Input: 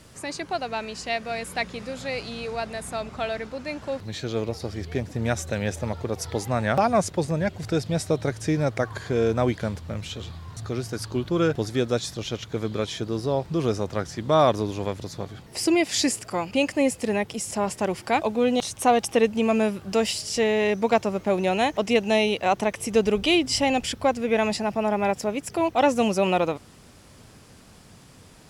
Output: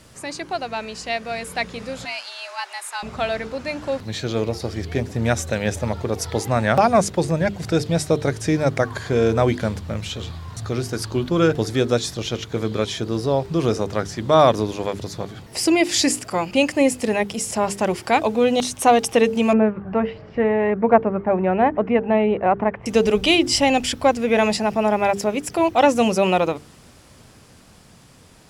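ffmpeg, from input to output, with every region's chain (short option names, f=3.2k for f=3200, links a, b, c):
-filter_complex "[0:a]asettb=1/sr,asplit=3[a][b][c];[a]atrim=end=2.054[d];[b]atrim=start=2.05:end=3.03,asetpts=PTS-STARTPTS,afade=t=in:d=0.004:c=qsin,afade=t=out:st=0.976:d=0.004:c=qsin,highpass=890,afreqshift=170[e];[c]atrim=start=3.026[f];[d][e]acrossfade=d=0.004:c1=hsin:c2=qsin[g];[g][f]acrossfade=d=0.004:c1=qsin:c2=hsin,asettb=1/sr,asplit=3[h][i][j];[h]atrim=end=19.534[k];[i]atrim=start=19.53:end=22.86,asetpts=PTS-STARTPTS,afade=t=in:d=0.004:c=qsin,afade=t=out:st=3.326:d=0.004:c=qsin,lowpass=f=1.8k:w=0.5412,lowpass=f=1.8k:w=1.3066,aphaser=in_gain=1:out_gain=1:delay=1.3:decay=0.25:speed=1.4:type=triangular[l];[j]atrim=start=22.856[m];[k][l]acrossfade=d=0.004:c1=hsin:c2=qsin[n];[n][m]acrossfade=d=0.004:c1=qsin:c2=hsin,bandreject=f=50:t=h:w=6,bandreject=f=100:t=h:w=6,bandreject=f=150:t=h:w=6,bandreject=f=200:t=h:w=6,bandreject=f=250:t=h:w=6,bandreject=f=300:t=h:w=6,bandreject=f=350:t=h:w=6,bandreject=f=400:t=h:w=6,bandreject=f=450:t=h:w=6,dynaudnorm=f=210:g=21:m=3.5dB,volume=2dB"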